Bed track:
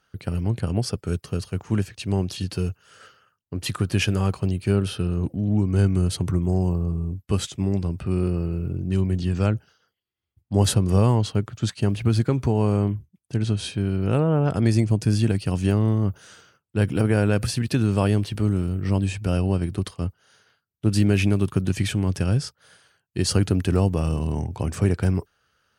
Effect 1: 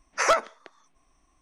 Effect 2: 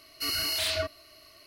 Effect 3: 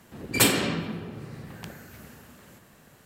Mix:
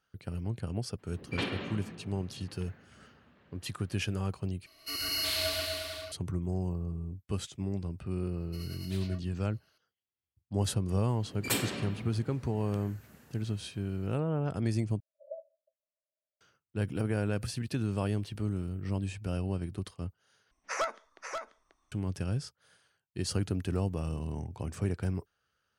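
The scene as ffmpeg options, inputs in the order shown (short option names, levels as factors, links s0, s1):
-filter_complex "[3:a]asplit=2[s0][s1];[2:a]asplit=2[s2][s3];[1:a]asplit=2[s4][s5];[0:a]volume=0.282[s6];[s0]lowpass=f=3800:w=0.5412,lowpass=f=3800:w=1.3066[s7];[s2]aecho=1:1:130|247|352.3|447.1|532.4|609.1|678.2:0.794|0.631|0.501|0.398|0.316|0.251|0.2[s8];[s3]tremolo=f=9.7:d=0.45[s9];[s4]asuperpass=centerf=590:order=20:qfactor=4.6[s10];[s5]aecho=1:1:537:0.473[s11];[s6]asplit=4[s12][s13][s14][s15];[s12]atrim=end=4.664[s16];[s8]atrim=end=1.46,asetpts=PTS-STARTPTS,volume=0.501[s17];[s13]atrim=start=6.116:end=15.004[s18];[s10]atrim=end=1.41,asetpts=PTS-STARTPTS,volume=0.158[s19];[s14]atrim=start=16.406:end=20.514[s20];[s11]atrim=end=1.41,asetpts=PTS-STARTPTS,volume=0.282[s21];[s15]atrim=start=21.916[s22];[s7]atrim=end=3.05,asetpts=PTS-STARTPTS,volume=0.266,afade=t=in:d=0.02,afade=t=out:st=3.03:d=0.02,adelay=980[s23];[s9]atrim=end=1.46,asetpts=PTS-STARTPTS,volume=0.133,afade=t=in:d=0.004:c=hsin,afade=t=out:st=1.456:d=0.004:c=hsin,adelay=8320[s24];[s1]atrim=end=3.05,asetpts=PTS-STARTPTS,volume=0.299,afade=t=in:d=0.004:c=hsin,afade=t=out:st=3.046:d=0.004:c=hsin,adelay=11100[s25];[s16][s17]acrossfade=d=0.004:c1=hsin:c2=hsin[s26];[s26][s18]acrossfade=d=0.004:c1=hsin:c2=hsin[s27];[s27][s19]acrossfade=d=0.004:c1=hsin:c2=hsin[s28];[s28][s20]acrossfade=d=0.004:c1=hsin:c2=hsin[s29];[s29][s21]acrossfade=d=0.004:c1=hsin:c2=hsin[s30];[s30][s22]acrossfade=d=0.004:c1=hsin:c2=hsin[s31];[s31][s23][s24][s25]amix=inputs=4:normalize=0"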